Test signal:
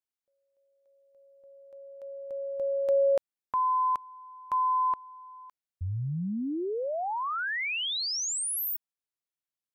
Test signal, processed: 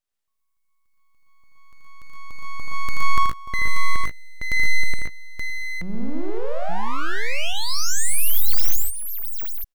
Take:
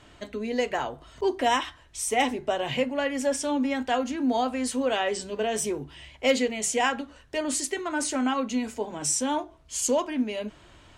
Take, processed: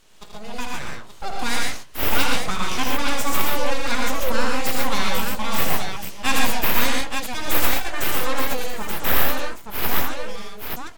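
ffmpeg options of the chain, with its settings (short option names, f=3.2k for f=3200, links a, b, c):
-filter_complex "[0:a]highshelf=f=4.4k:g=11.5,bandreject=f=1.8k:w=9.9,dynaudnorm=f=190:g=17:m=9.5dB,aeval=exprs='abs(val(0))':c=same,asplit=2[a][b];[b]aecho=0:1:52|80|118|137|153|877:0.224|0.531|0.631|0.562|0.133|0.562[c];[a][c]amix=inputs=2:normalize=0,volume=-3.5dB"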